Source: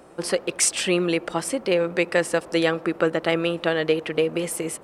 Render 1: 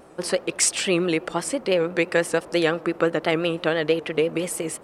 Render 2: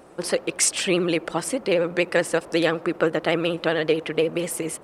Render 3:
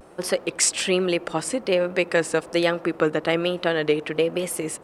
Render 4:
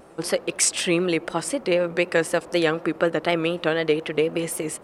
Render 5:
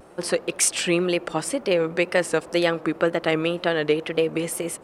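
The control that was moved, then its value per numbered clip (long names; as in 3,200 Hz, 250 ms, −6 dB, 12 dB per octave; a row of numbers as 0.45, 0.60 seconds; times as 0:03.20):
pitch vibrato, speed: 5.9, 16, 1.2, 4, 2 Hertz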